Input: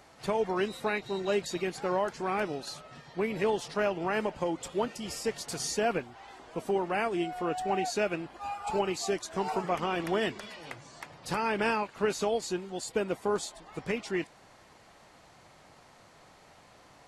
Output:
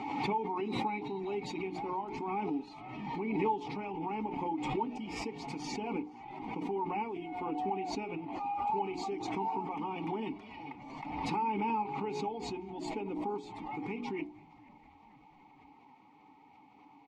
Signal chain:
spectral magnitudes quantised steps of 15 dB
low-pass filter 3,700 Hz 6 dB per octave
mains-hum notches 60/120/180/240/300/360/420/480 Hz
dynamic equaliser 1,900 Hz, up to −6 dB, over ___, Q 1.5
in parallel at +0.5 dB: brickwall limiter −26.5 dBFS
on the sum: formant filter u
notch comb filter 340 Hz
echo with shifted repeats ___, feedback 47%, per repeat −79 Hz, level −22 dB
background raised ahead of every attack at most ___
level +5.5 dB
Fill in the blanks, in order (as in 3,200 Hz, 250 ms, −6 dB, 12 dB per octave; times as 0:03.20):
−48 dBFS, 474 ms, 32 dB per second